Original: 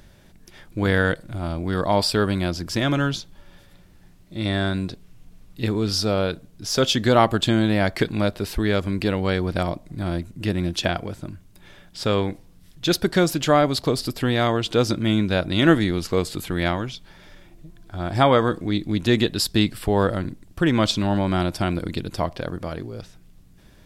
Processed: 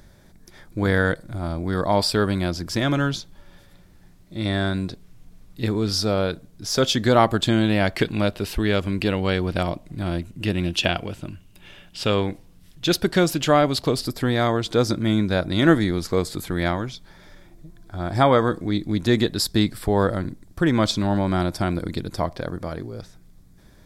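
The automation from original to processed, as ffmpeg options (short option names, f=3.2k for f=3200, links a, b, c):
-af "asetnsamples=n=441:p=0,asendcmd='1.95 equalizer g -4;7.52 equalizer g 5.5;10.53 equalizer g 12;12.1 equalizer g 2;14.04 equalizer g -9.5',equalizer=f=2.8k:t=o:w=0.34:g=-10.5"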